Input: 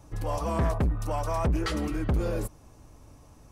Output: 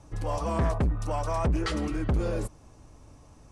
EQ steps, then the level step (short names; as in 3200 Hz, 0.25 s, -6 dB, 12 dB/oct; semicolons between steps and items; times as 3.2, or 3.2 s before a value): LPF 9900 Hz 24 dB/oct; 0.0 dB